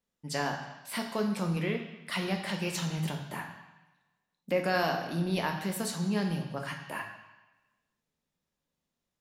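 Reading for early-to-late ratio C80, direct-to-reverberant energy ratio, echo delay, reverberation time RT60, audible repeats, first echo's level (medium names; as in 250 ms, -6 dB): 8.5 dB, 3.0 dB, no echo, 1.1 s, no echo, no echo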